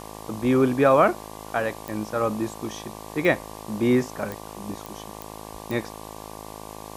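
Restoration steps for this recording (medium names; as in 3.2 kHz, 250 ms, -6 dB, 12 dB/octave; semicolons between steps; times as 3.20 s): de-click; de-hum 53.2 Hz, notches 22; noise print and reduce 28 dB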